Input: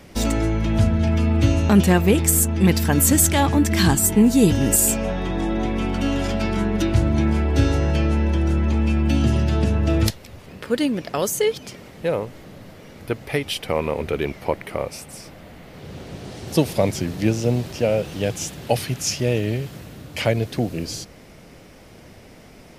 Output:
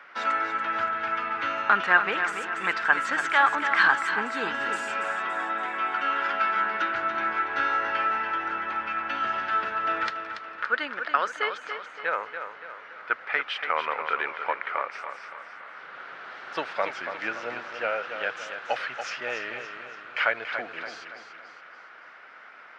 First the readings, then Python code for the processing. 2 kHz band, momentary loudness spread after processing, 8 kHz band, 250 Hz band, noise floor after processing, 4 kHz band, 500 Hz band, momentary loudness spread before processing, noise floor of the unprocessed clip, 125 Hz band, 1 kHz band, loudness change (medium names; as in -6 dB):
+7.0 dB, 19 LU, under -25 dB, -23.0 dB, -48 dBFS, -7.0 dB, -11.5 dB, 15 LU, -45 dBFS, under -35 dB, +4.5 dB, -6.5 dB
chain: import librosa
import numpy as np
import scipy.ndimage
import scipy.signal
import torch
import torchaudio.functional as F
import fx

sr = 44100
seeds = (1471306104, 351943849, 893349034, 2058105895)

p1 = fx.highpass_res(x, sr, hz=1400.0, q=4.3)
p2 = fx.spacing_loss(p1, sr, db_at_10k=45)
p3 = p2 + fx.echo_feedback(p2, sr, ms=284, feedback_pct=47, wet_db=-8.5, dry=0)
y = F.gain(torch.from_numpy(p3), 6.5).numpy()